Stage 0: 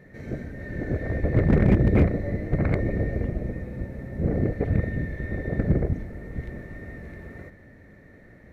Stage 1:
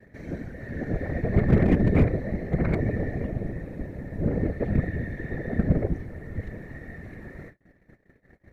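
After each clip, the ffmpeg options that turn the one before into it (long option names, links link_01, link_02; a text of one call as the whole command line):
ffmpeg -i in.wav -af "afftfilt=real='hypot(re,im)*cos(2*PI*random(0))':imag='hypot(re,im)*sin(2*PI*random(1))':win_size=512:overlap=0.75,acompressor=mode=upward:threshold=-46dB:ratio=2.5,agate=range=-40dB:threshold=-50dB:ratio=16:detection=peak,volume=5dB" out.wav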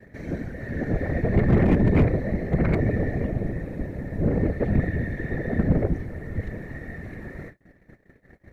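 ffmpeg -i in.wav -af "asoftclip=type=tanh:threshold=-15.5dB,volume=4dB" out.wav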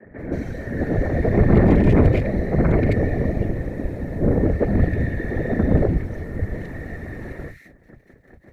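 ffmpeg -i in.wav -filter_complex "[0:a]acrossover=split=160|2000[link_01][link_02][link_03];[link_01]adelay=40[link_04];[link_03]adelay=180[link_05];[link_04][link_02][link_05]amix=inputs=3:normalize=0,volume=5.5dB" out.wav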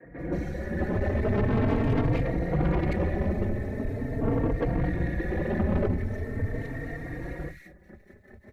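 ffmpeg -i in.wav -filter_complex "[0:a]asoftclip=type=tanh:threshold=-19.5dB,asplit=2[link_01][link_02];[link_02]adelay=3.8,afreqshift=0.42[link_03];[link_01][link_03]amix=inputs=2:normalize=1,volume=1dB" out.wav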